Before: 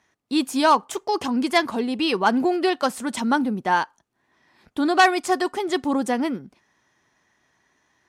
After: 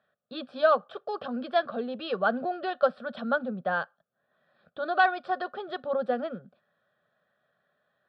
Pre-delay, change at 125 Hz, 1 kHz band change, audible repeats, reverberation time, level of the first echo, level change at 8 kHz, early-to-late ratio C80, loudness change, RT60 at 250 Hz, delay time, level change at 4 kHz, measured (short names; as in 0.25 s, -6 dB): none, -7.0 dB, -7.5 dB, none, none, none, under -40 dB, none, -7.0 dB, none, none, -12.5 dB